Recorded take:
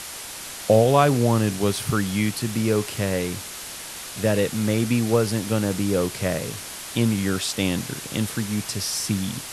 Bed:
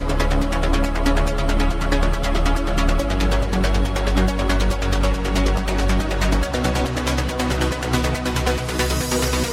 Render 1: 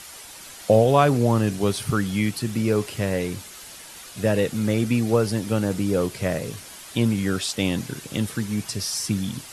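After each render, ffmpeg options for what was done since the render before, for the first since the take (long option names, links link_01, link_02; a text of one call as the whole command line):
ffmpeg -i in.wav -af "afftdn=noise_reduction=8:noise_floor=-36" out.wav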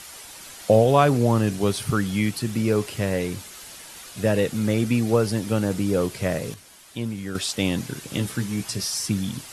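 ffmpeg -i in.wav -filter_complex "[0:a]asettb=1/sr,asplit=3[link_01][link_02][link_03];[link_01]atrim=end=8.064[link_04];[link_02]atrim=start=8.06:end=8.88,asetpts=PTS-STARTPTS,afade=type=in:duration=0.004:curve=qsin,afade=type=out:start_time=0.816:duration=0.004:curve=qsin,asplit=2[link_05][link_06];[link_06]adelay=16,volume=-7dB[link_07];[link_05][link_07]amix=inputs=2:normalize=0,atrim=end_sample=36162[link_08];[link_03]atrim=start=8.876[link_09];[link_04][link_08]acrossfade=duration=0.004:curve1=hsin:curve2=qsin[link_10];[link_10][link_09]acrossfade=duration=0.004:curve1=qsin:curve2=hsin,asplit=3[link_11][link_12][link_13];[link_11]atrim=end=6.542[link_14];[link_12]atrim=start=6.538:end=7.352,asetpts=PTS-STARTPTS,volume=-8dB[link_15];[link_13]atrim=start=7.348[link_16];[link_14][link_15]acrossfade=duration=0.004:curve1=hsin:curve2=hsin[link_17];[link_17][link_16]acrossfade=duration=0.004:curve1=hsin:curve2=hsin" out.wav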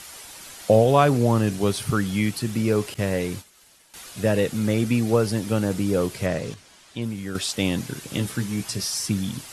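ffmpeg -i in.wav -filter_complex "[0:a]asettb=1/sr,asplit=3[link_01][link_02][link_03];[link_01]atrim=end=2.944[link_04];[link_02]atrim=start=2.94:end=3.94,asetpts=PTS-STARTPTS,afade=type=in:duration=0.004:curve=qsin,afade=type=out:start_time=0.996:duration=0.004:curve=qsin,agate=range=-33dB:threshold=-33dB:ratio=3:release=100:detection=peak[link_05];[link_03]atrim=start=3.936[link_06];[link_04][link_05]acrossfade=duration=0.004:curve1=hsin:curve2=qsin[link_07];[link_07][link_06]acrossfade=duration=0.004:curve1=qsin:curve2=hsin,asettb=1/sr,asplit=3[link_08][link_09][link_10];[link_08]atrim=end=6.264[link_11];[link_09]atrim=start=6.26:end=7.02,asetpts=PTS-STARTPTS,afade=type=in:duration=0.004:curve=qsin,afade=type=out:start_time=0.756:duration=0.004:curve=qsin,lowpass=7200[link_12];[link_10]atrim=start=7.016[link_13];[link_11][link_12]acrossfade=duration=0.004:curve1=hsin:curve2=qsin[link_14];[link_14][link_13]acrossfade=duration=0.004:curve1=qsin:curve2=hsin" out.wav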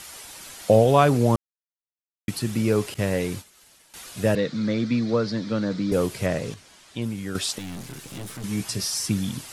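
ffmpeg -i in.wav -filter_complex "[0:a]asettb=1/sr,asplit=3[link_01][link_02][link_03];[link_01]atrim=end=4.354[link_04];[link_02]atrim=start=4.35:end=5.92,asetpts=PTS-STARTPTS,afade=type=in:duration=0.004:curve=qsin,afade=type=out:start_time=1.566:duration=0.004:curve=qsin,highpass=frequency=130:width=0.5412,highpass=frequency=130:width=1.3066,equalizer=frequency=390:width_type=q:width=4:gain=-7,equalizer=frequency=790:width_type=q:width=4:gain=-10,equalizer=frequency=2800:width_type=q:width=4:gain=-10,equalizer=frequency=4100:width_type=q:width=4:gain=6,lowpass=frequency=5100:width=0.5412,lowpass=frequency=5100:width=1.3066[link_05];[link_03]atrim=start=5.916[link_06];[link_04][link_05]acrossfade=duration=0.004:curve1=hsin:curve2=qsin[link_07];[link_07][link_06]acrossfade=duration=0.004:curve1=qsin:curve2=hsin,asettb=1/sr,asplit=3[link_08][link_09][link_10];[link_08]atrim=end=7.584[link_11];[link_09]atrim=start=7.58:end=8.44,asetpts=PTS-STARTPTS,afade=type=in:duration=0.004:curve=qsin,afade=type=out:start_time=0.856:duration=0.004:curve=qsin,aeval=exprs='(tanh(44.7*val(0)+0.5)-tanh(0.5))/44.7':channel_layout=same[link_12];[link_10]atrim=start=8.436[link_13];[link_11][link_12]acrossfade=duration=0.004:curve1=hsin:curve2=qsin[link_14];[link_14][link_13]acrossfade=duration=0.004:curve1=qsin:curve2=hsin,asplit=3[link_15][link_16][link_17];[link_15]atrim=end=1.36,asetpts=PTS-STARTPTS,afade=type=out:start_time=1.356:duration=0.004:curve=hsin[link_18];[link_16]atrim=start=1.36:end=2.28,asetpts=PTS-STARTPTS,volume=0[link_19];[link_17]atrim=start=2.28,asetpts=PTS-STARTPTS,afade=type=in:duration=0.004:curve=hsin[link_20];[link_18][link_19][link_20]concat=n=3:v=0:a=1" out.wav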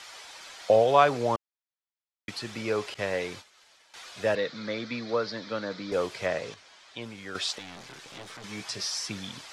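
ffmpeg -i in.wav -filter_complex "[0:a]acrossover=split=460 6200:gain=0.158 1 0.0708[link_01][link_02][link_03];[link_01][link_02][link_03]amix=inputs=3:normalize=0,bandreject=frequency=2800:width=23" out.wav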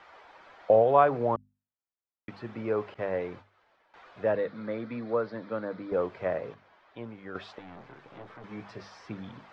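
ffmpeg -i in.wav -af "lowpass=1300,bandreject=frequency=50:width_type=h:width=6,bandreject=frequency=100:width_type=h:width=6,bandreject=frequency=150:width_type=h:width=6,bandreject=frequency=200:width_type=h:width=6,bandreject=frequency=250:width_type=h:width=6" out.wav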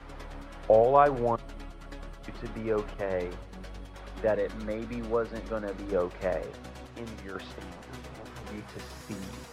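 ffmpeg -i in.wav -i bed.wav -filter_complex "[1:a]volume=-24.5dB[link_01];[0:a][link_01]amix=inputs=2:normalize=0" out.wav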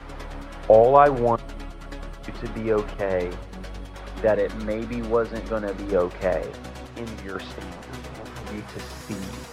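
ffmpeg -i in.wav -af "volume=6.5dB,alimiter=limit=-3dB:level=0:latency=1" out.wav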